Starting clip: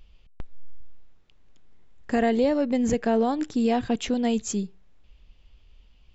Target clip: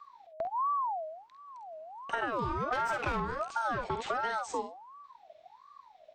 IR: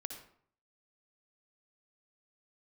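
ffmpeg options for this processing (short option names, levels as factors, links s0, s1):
-filter_complex "[0:a]acrossover=split=280|1600[s0][s1][s2];[s2]alimiter=level_in=2.51:limit=0.0631:level=0:latency=1:release=112,volume=0.398[s3];[s0][s1][s3]amix=inputs=3:normalize=0,asettb=1/sr,asplit=3[s4][s5][s6];[s4]atrim=end=2.714[s7];[s5]atrim=start=2.71:end=3.2,asetpts=PTS-STARTPTS,afade=t=in:d=0.004:c=qsin,afade=t=out:st=0.486:d=0.004:c=qsin,asplit=2[s8][s9];[s9]highpass=f=720:p=1,volume=20,asoftclip=type=tanh:threshold=0.251[s10];[s8][s10]amix=inputs=2:normalize=0,lowpass=f=2400:p=1,volume=0.501[s11];[s6]atrim=start=3.196[s12];[s7][s11]acrossfade=d=0.004:c1=hsin:c2=qsin[s13];[s13][s12]acrossfade=d=0.004:c1=qsin:c2=hsin,asettb=1/sr,asplit=3[s14][s15][s16];[s14]atrim=end=3.934[s17];[s15]atrim=start=3.93:end=4.62,asetpts=PTS-STARTPTS,afade=t=in:d=0.004:c=qsin,afade=t=out:st=0.686:d=0.004:c=qsin,equalizer=f=1400:t=o:w=2:g=8[s18];[s16]atrim=start=4.616[s19];[s17][s18]acrossfade=d=0.004:c1=hsin:c2=qsin[s20];[s20][s19]acrossfade=d=0.004:c1=qsin:c2=hsin,asplit=2[s21][s22];[s22]aecho=0:1:49|67:0.447|0.237[s23];[s21][s23]amix=inputs=2:normalize=0,acompressor=threshold=0.0631:ratio=12,aeval=exprs='val(0)*sin(2*PI*890*n/s+890*0.3/1.4*sin(2*PI*1.4*n/s))':c=same,volume=0.794"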